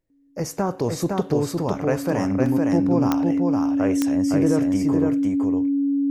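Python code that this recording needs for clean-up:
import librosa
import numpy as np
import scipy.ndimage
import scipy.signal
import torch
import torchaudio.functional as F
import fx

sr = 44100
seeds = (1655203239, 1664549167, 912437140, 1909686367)

y = fx.fix_declick_ar(x, sr, threshold=10.0)
y = fx.notch(y, sr, hz=280.0, q=30.0)
y = fx.fix_interpolate(y, sr, at_s=(2.46,), length_ms=1.6)
y = fx.fix_echo_inverse(y, sr, delay_ms=511, level_db=-3.0)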